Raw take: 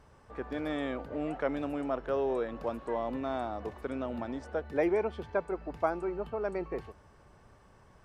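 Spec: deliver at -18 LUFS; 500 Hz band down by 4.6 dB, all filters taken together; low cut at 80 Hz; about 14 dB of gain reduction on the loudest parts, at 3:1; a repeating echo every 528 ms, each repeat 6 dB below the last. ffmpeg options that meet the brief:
-af "highpass=80,equalizer=f=500:t=o:g=-6,acompressor=threshold=0.00447:ratio=3,aecho=1:1:528|1056|1584|2112|2640|3168:0.501|0.251|0.125|0.0626|0.0313|0.0157,volume=29.9"

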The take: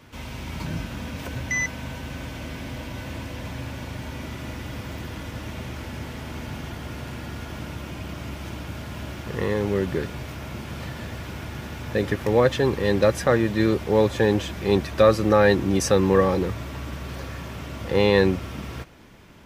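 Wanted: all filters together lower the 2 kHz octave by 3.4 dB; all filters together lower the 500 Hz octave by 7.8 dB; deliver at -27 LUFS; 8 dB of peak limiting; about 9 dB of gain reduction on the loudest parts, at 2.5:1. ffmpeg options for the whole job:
-af "equalizer=f=500:t=o:g=-9,equalizer=f=2000:t=o:g=-3.5,acompressor=threshold=0.0282:ratio=2.5,volume=2.66,alimiter=limit=0.2:level=0:latency=1"

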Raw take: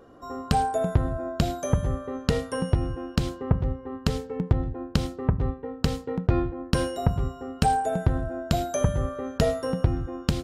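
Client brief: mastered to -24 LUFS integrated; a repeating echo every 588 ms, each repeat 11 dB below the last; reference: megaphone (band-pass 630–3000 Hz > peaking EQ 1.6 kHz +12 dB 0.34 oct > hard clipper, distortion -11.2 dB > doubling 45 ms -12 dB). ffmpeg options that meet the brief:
-filter_complex "[0:a]highpass=630,lowpass=3000,equalizer=f=1600:t=o:w=0.34:g=12,aecho=1:1:588|1176|1764:0.282|0.0789|0.0221,asoftclip=type=hard:threshold=0.0596,asplit=2[s0][s1];[s1]adelay=45,volume=0.251[s2];[s0][s2]amix=inputs=2:normalize=0,volume=3.16"

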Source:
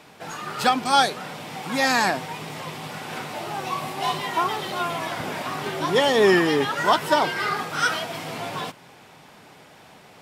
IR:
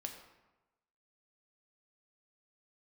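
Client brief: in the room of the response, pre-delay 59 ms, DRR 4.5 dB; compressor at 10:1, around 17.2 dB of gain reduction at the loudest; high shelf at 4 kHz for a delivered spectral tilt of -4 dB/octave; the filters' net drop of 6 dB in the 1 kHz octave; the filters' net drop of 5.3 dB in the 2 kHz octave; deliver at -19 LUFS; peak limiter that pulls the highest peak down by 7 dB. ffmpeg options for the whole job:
-filter_complex "[0:a]equalizer=f=1000:t=o:g=-7,equalizer=f=2000:t=o:g=-5,highshelf=f=4000:g=4,acompressor=threshold=0.0251:ratio=10,alimiter=level_in=1.58:limit=0.0631:level=0:latency=1,volume=0.631,asplit=2[s0][s1];[1:a]atrim=start_sample=2205,adelay=59[s2];[s1][s2]afir=irnorm=-1:irlink=0,volume=0.75[s3];[s0][s3]amix=inputs=2:normalize=0,volume=7.08"

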